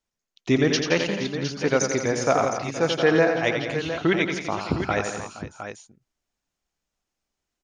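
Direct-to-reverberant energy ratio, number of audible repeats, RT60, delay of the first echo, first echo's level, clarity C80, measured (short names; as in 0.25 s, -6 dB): none, 6, none, 88 ms, -6.5 dB, none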